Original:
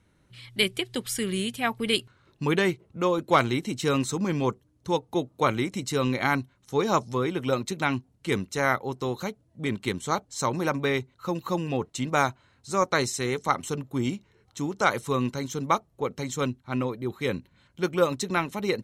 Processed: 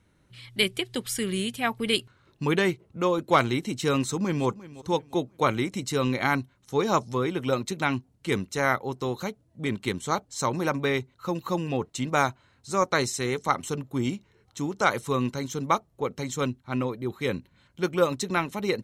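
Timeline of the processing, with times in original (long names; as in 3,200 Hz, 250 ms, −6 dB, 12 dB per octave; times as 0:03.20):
0:04.01–0:04.46: delay throw 350 ms, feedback 35%, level −17.5 dB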